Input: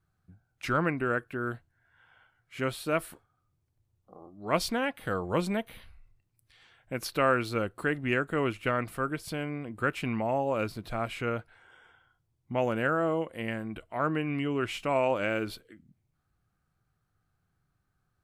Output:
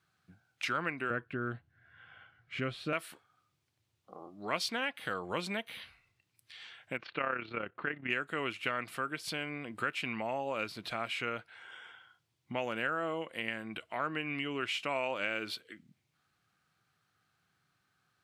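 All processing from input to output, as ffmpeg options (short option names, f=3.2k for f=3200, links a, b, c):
-filter_complex "[0:a]asettb=1/sr,asplit=3[a][b][c];[a]atrim=end=1.104[d];[b]atrim=start=1.1:end=2.93,asetpts=PTS-STARTPTS,afade=t=in:d=0.004:c=qsin,afade=t=out:st=1.826:d=0.004:c=qsin,asuperstop=centerf=910:order=20:qfactor=6.8,aemphasis=mode=reproduction:type=riaa[e];[c]atrim=start=2.926[f];[d][e]acrossfade=d=0.004:c1=hsin:c2=qsin[g];[g][f]acrossfade=d=0.004:c1=qsin:c2=hsin,asettb=1/sr,asplit=3[h][i][j];[h]atrim=end=6.974[k];[i]atrim=start=6.97:end=8.1,asetpts=PTS-STARTPTS,afade=t=in:d=0.004:c=qsin,afade=t=out:st=1.126:d=0.004:c=qsin,lowpass=f=2.7k:w=0.5412,lowpass=f=2.7k:w=1.3066,tremolo=f=33:d=0.621[l];[j]atrim=start=8.096[m];[k][l]acrossfade=d=0.004:c1=hsin:c2=qsin[n];[n][m]acrossfade=d=0.004:c1=qsin:c2=hsin,equalizer=f=3.2k:t=o:w=2.7:g=12.5,acompressor=threshold=-38dB:ratio=2,highpass=140,volume=-1dB"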